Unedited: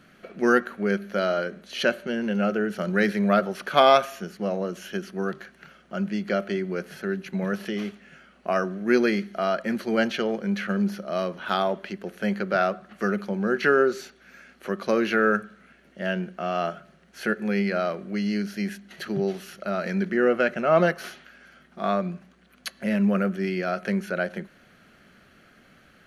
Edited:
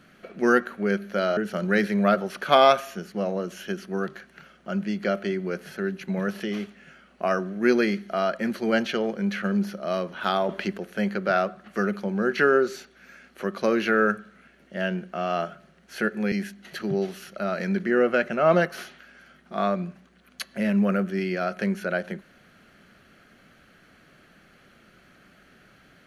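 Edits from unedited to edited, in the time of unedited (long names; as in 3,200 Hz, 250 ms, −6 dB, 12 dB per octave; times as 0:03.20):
0:01.37–0:02.62: remove
0:11.74–0:12.03: clip gain +6 dB
0:17.57–0:18.58: remove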